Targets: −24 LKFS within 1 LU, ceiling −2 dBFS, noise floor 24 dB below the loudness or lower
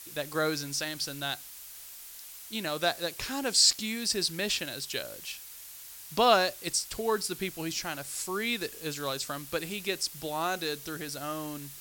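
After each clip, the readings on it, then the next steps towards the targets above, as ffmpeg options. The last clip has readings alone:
background noise floor −47 dBFS; target noise floor −54 dBFS; integrated loudness −30.0 LKFS; sample peak −8.5 dBFS; target loudness −24.0 LKFS
→ -af "afftdn=noise_reduction=7:noise_floor=-47"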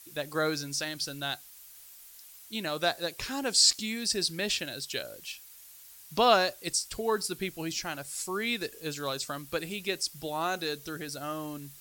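background noise floor −52 dBFS; target noise floor −54 dBFS
→ -af "afftdn=noise_reduction=6:noise_floor=-52"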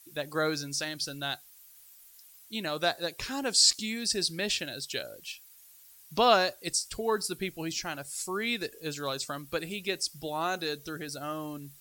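background noise floor −55 dBFS; integrated loudness −30.0 LKFS; sample peak −8.5 dBFS; target loudness −24.0 LKFS
→ -af "volume=6dB"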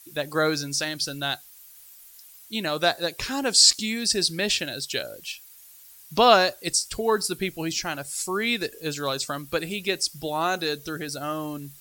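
integrated loudness −24.0 LKFS; sample peak −2.5 dBFS; background noise floor −49 dBFS

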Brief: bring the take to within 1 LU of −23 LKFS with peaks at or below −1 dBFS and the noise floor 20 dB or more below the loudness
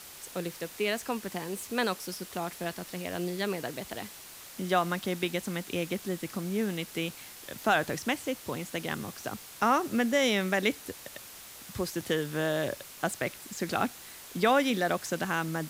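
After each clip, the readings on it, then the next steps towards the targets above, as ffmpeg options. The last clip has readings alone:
background noise floor −48 dBFS; target noise floor −51 dBFS; integrated loudness −31.0 LKFS; sample peak −12.5 dBFS; target loudness −23.0 LKFS
→ -af "afftdn=noise_reduction=6:noise_floor=-48"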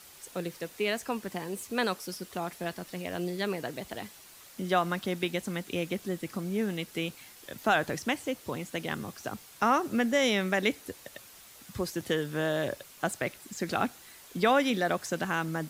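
background noise floor −52 dBFS; integrated loudness −31.5 LKFS; sample peak −12.5 dBFS; target loudness −23.0 LKFS
→ -af "volume=8.5dB"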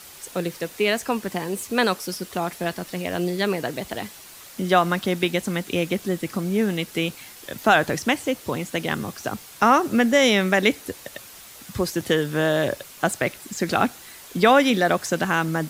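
integrated loudness −23.0 LKFS; sample peak −4.0 dBFS; background noise floor −44 dBFS

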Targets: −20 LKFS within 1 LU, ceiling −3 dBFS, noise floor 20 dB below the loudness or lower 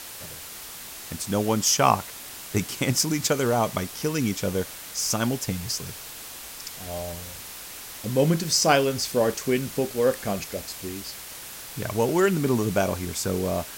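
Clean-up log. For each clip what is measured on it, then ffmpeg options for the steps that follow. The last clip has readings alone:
background noise floor −40 dBFS; target noise floor −45 dBFS; integrated loudness −25.0 LKFS; sample peak −4.5 dBFS; target loudness −20.0 LKFS
→ -af "afftdn=noise_reduction=6:noise_floor=-40"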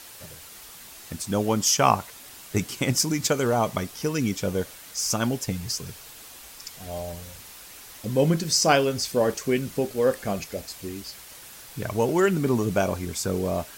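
background noise floor −45 dBFS; integrated loudness −25.0 LKFS; sample peak −4.5 dBFS; target loudness −20.0 LKFS
→ -af "volume=5dB,alimiter=limit=-3dB:level=0:latency=1"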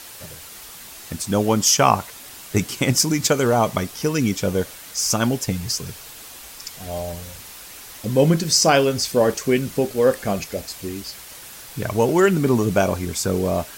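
integrated loudness −20.0 LKFS; sample peak −3.0 dBFS; background noise floor −40 dBFS

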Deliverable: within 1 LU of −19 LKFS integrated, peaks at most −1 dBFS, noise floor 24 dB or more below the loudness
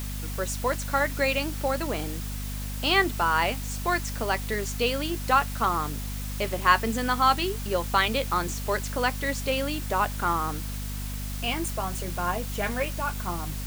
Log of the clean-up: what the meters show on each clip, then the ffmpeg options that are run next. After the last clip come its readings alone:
mains hum 50 Hz; hum harmonics up to 250 Hz; level of the hum −31 dBFS; background noise floor −33 dBFS; target noise floor −51 dBFS; integrated loudness −27.0 LKFS; sample peak −4.5 dBFS; target loudness −19.0 LKFS
→ -af "bandreject=frequency=50:width_type=h:width=4,bandreject=frequency=100:width_type=h:width=4,bandreject=frequency=150:width_type=h:width=4,bandreject=frequency=200:width_type=h:width=4,bandreject=frequency=250:width_type=h:width=4"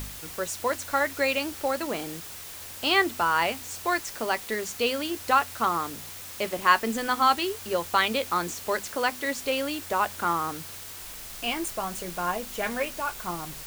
mains hum none found; background noise floor −41 dBFS; target noise floor −51 dBFS
→ -af "afftdn=noise_reduction=10:noise_floor=-41"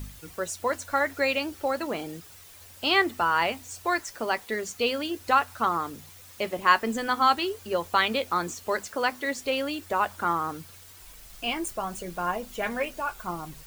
background noise floor −49 dBFS; target noise floor −52 dBFS
→ -af "afftdn=noise_reduction=6:noise_floor=-49"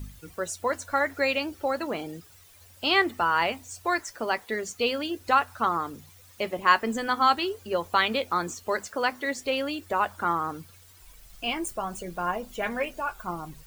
background noise floor −53 dBFS; integrated loudness −27.5 LKFS; sample peak −5.0 dBFS; target loudness −19.0 LKFS
→ -af "volume=8.5dB,alimiter=limit=-1dB:level=0:latency=1"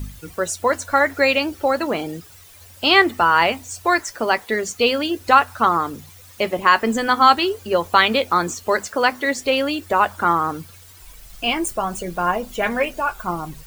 integrated loudness −19.0 LKFS; sample peak −1.0 dBFS; background noise floor −45 dBFS

